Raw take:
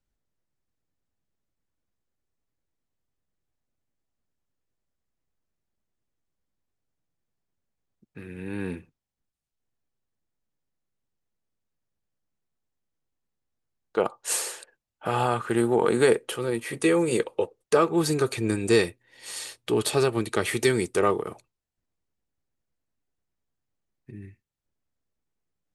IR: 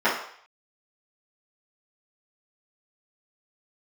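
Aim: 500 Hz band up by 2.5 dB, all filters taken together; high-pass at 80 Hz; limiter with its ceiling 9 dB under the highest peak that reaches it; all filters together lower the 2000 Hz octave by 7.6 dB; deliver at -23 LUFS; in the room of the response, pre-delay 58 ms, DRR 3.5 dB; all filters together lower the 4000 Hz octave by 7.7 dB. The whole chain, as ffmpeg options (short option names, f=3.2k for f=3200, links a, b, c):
-filter_complex "[0:a]highpass=80,equalizer=f=500:t=o:g=3.5,equalizer=f=2k:t=o:g=-8.5,equalizer=f=4k:t=o:g=-7,alimiter=limit=-15.5dB:level=0:latency=1,asplit=2[a][b];[1:a]atrim=start_sample=2205,adelay=58[c];[b][c]afir=irnorm=-1:irlink=0,volume=-22dB[d];[a][d]amix=inputs=2:normalize=0,volume=3dB"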